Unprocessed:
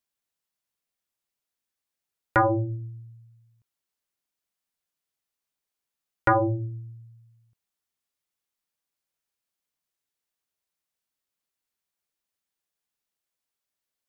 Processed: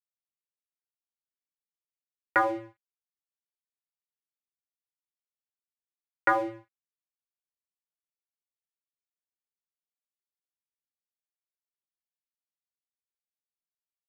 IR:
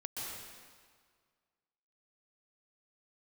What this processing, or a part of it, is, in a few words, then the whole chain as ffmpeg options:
pocket radio on a weak battery: -af "highpass=320,lowpass=3.1k,aeval=exprs='sgn(val(0))*max(abs(val(0))-0.0075,0)':c=same,equalizer=f=2k:t=o:w=0.77:g=9,volume=-4dB"

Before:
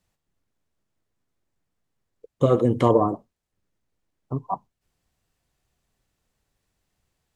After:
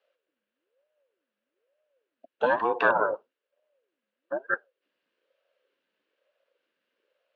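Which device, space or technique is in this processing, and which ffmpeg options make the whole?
voice changer toy: -af "aeval=exprs='val(0)*sin(2*PI*410*n/s+410*0.5/1.1*sin(2*PI*1.1*n/s))':c=same,highpass=490,equalizer=f=540:t=q:w=4:g=10,equalizer=f=790:t=q:w=4:g=-8,equalizer=f=1.6k:t=q:w=4:g=8,equalizer=f=2.8k:t=q:w=4:g=8,lowpass=f=4.1k:w=0.5412,lowpass=f=4.1k:w=1.3066"

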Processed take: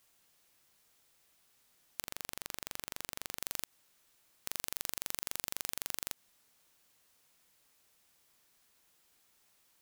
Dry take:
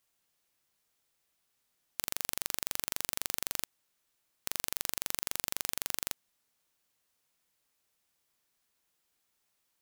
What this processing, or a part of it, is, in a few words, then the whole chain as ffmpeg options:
stacked limiters: -filter_complex "[0:a]alimiter=limit=-10.5dB:level=0:latency=1:release=100,alimiter=limit=-16dB:level=0:latency=1:release=28,asettb=1/sr,asplit=3[a][b][c];[a]atrim=end=2.014[d];[b]atrim=start=2.01:end=3.39,asetpts=PTS-STARTPTS,afade=t=in:d=0.004:c=qsin,afade=t=out:st=1.376:d=0.004:c=qsin,highshelf=f=4.3k:g=-6[e];[c]atrim=start=3.386[f];[d][e]acrossfade=d=0.004:c1=hsin:c2=qsin[g];[g][f]acrossfade=d=0.004:c1=qsin:c2=hsin,volume=8dB"

